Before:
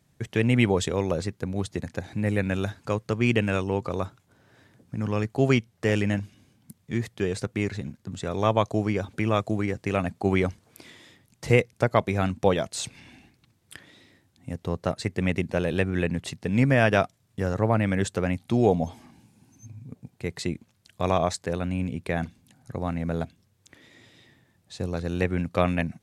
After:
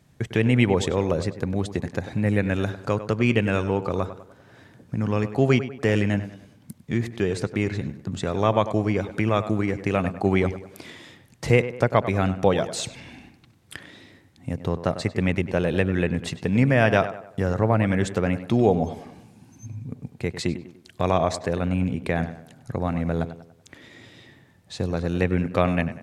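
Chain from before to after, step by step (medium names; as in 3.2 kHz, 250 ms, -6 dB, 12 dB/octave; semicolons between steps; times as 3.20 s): in parallel at +2 dB: compression, threshold -33 dBFS, peak gain reduction 18.5 dB; on the sum: treble shelf 5.1 kHz -5.5 dB; tape echo 98 ms, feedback 47%, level -11 dB, low-pass 2.4 kHz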